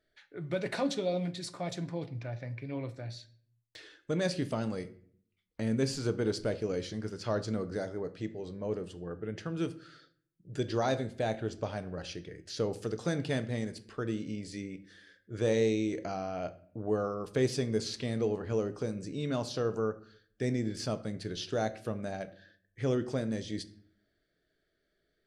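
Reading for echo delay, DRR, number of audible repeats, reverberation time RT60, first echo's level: no echo audible, 11.5 dB, no echo audible, 0.55 s, no echo audible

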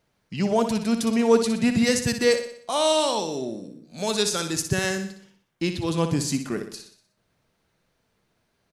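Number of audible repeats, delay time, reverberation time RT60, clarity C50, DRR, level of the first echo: 5, 61 ms, no reverb audible, no reverb audible, no reverb audible, −9.0 dB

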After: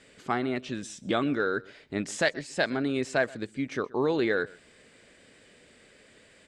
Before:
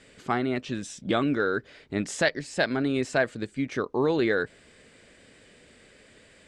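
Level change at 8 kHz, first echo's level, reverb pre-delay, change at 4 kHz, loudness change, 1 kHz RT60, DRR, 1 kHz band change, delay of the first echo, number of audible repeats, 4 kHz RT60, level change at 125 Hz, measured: −1.5 dB, −22.5 dB, no reverb audible, −1.5 dB, −2.0 dB, no reverb audible, no reverb audible, −1.5 dB, 128 ms, 1, no reverb audible, −4.0 dB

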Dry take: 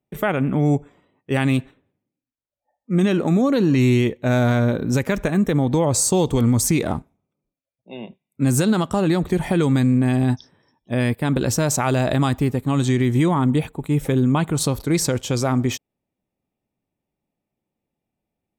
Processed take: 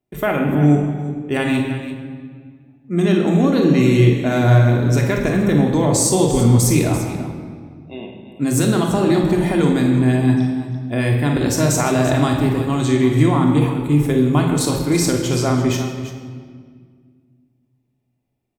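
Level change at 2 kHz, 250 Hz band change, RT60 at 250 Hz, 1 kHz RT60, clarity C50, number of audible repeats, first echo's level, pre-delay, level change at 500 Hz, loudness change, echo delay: +3.0 dB, +3.5 dB, 2.6 s, 1.7 s, 3.5 dB, 2, −9.0 dB, 3 ms, +3.5 dB, +3.0 dB, 47 ms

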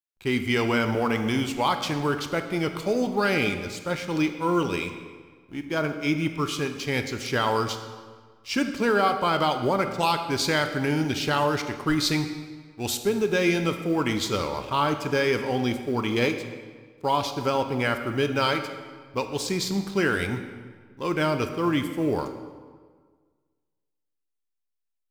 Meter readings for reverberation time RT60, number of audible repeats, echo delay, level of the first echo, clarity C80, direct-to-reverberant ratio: 1.6 s, no echo audible, no echo audible, no echo audible, 10.0 dB, 7.0 dB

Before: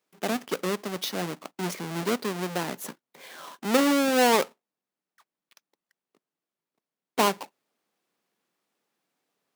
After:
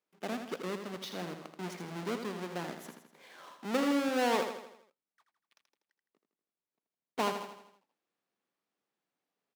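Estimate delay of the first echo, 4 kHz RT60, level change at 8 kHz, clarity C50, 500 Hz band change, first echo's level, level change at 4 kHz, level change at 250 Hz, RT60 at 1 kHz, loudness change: 81 ms, no reverb audible, −13.5 dB, no reverb audible, −8.0 dB, −7.5 dB, −10.0 dB, −7.5 dB, no reverb audible, −8.5 dB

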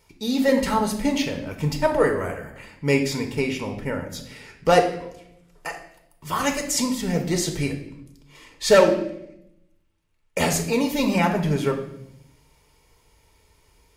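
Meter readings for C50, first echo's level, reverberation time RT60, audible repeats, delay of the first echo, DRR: 9.0 dB, no echo audible, 0.75 s, no echo audible, no echo audible, 3.5 dB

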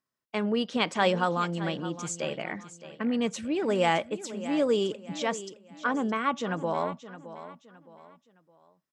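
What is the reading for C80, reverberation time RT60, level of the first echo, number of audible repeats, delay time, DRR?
no reverb audible, no reverb audible, −14.0 dB, 3, 616 ms, no reverb audible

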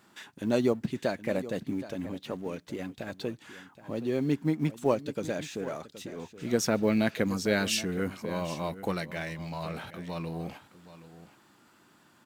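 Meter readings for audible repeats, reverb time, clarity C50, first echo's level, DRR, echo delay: 1, no reverb audible, no reverb audible, −15.0 dB, no reverb audible, 772 ms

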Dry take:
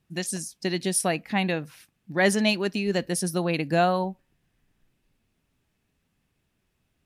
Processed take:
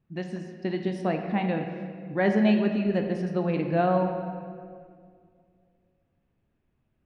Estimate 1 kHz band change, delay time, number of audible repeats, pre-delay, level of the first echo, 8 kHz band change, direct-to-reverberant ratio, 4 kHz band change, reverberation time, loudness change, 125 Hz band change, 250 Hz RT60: −1.5 dB, no echo audible, no echo audible, 7 ms, no echo audible, below −25 dB, 4.0 dB, −12.0 dB, 2.1 s, −1.0 dB, +1.0 dB, 2.5 s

